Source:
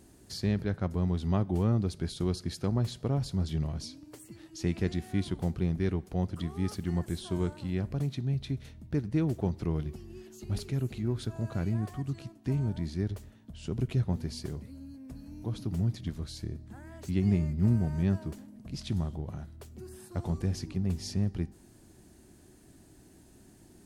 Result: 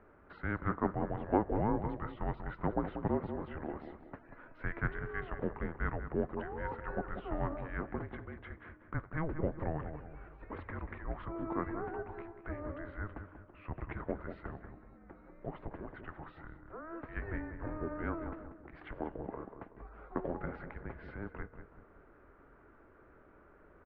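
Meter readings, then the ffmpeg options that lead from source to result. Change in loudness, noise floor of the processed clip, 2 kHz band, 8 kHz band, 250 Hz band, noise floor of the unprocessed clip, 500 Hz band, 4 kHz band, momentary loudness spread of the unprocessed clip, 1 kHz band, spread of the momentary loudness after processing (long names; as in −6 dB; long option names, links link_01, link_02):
−7.5 dB, −61 dBFS, +5.0 dB, below −30 dB, −8.0 dB, −57 dBFS, −1.5 dB, below −20 dB, 16 LU, +5.5 dB, 17 LU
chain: -filter_complex "[0:a]equalizer=frequency=340:width=6.4:gain=5.5,asplit=2[link_01][link_02];[link_02]adelay=188,lowpass=frequency=1400:poles=1,volume=-7dB,asplit=2[link_03][link_04];[link_04]adelay=188,lowpass=frequency=1400:poles=1,volume=0.45,asplit=2[link_05][link_06];[link_06]adelay=188,lowpass=frequency=1400:poles=1,volume=0.45,asplit=2[link_07][link_08];[link_08]adelay=188,lowpass=frequency=1400:poles=1,volume=0.45,asplit=2[link_09][link_10];[link_10]adelay=188,lowpass=frequency=1400:poles=1,volume=0.45[link_11];[link_01][link_03][link_05][link_07][link_09][link_11]amix=inputs=6:normalize=0,highpass=frequency=560:width_type=q:width=0.5412,highpass=frequency=560:width_type=q:width=1.307,lowpass=frequency=2100:width_type=q:width=0.5176,lowpass=frequency=2100:width_type=q:width=0.7071,lowpass=frequency=2100:width_type=q:width=1.932,afreqshift=-320,volume=9dB"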